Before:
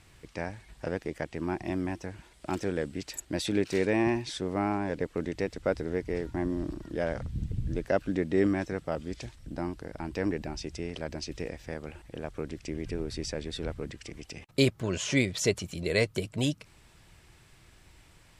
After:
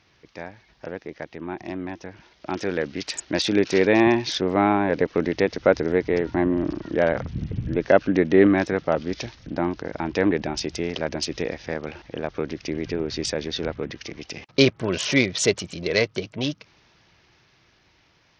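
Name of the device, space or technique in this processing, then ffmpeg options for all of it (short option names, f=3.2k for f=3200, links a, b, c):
Bluetooth headset: -filter_complex "[0:a]asettb=1/sr,asplit=3[a][b][c];[a]atrim=end=2.574[d];[b]atrim=start=2.57:end=3.42,asetpts=PTS-STARTPTS,afade=t=in:d=0.004:c=qsin,afade=t=out:st=0.846:d=0.004:c=qsin,equalizer=f=2.9k:w=0.34:g=4[e];[c]atrim=start=3.416[f];[d][e]acrossfade=d=0.004:c1=hsin:c2=qsin[g];[g][f]acrossfade=d=0.004:c1=qsin:c2=hsin,highpass=f=210:p=1,dynaudnorm=f=710:g=9:m=15dB,aresample=16000,aresample=44100" -ar 48000 -c:a sbc -b:a 64k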